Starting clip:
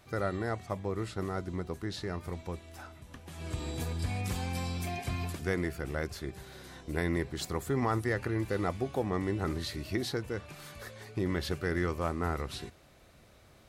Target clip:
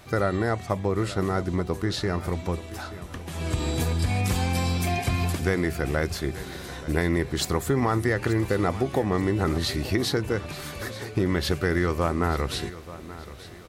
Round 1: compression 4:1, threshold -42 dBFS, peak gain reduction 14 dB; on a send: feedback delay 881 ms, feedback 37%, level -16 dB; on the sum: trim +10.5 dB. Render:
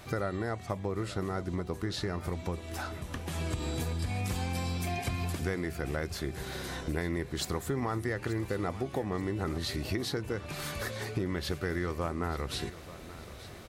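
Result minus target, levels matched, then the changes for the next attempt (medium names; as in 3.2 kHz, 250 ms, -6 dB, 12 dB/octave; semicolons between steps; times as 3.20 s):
compression: peak gain reduction +9 dB
change: compression 4:1, threshold -30 dBFS, peak gain reduction 5 dB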